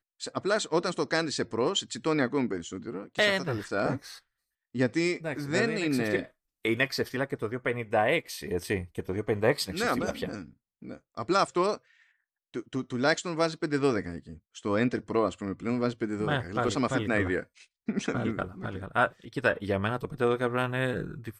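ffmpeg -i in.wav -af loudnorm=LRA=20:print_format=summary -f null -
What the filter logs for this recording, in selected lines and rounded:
Input Integrated:    -29.4 LUFS
Input True Peak:     -11.2 dBTP
Input LRA:             1.2 LU
Input Threshold:     -39.8 LUFS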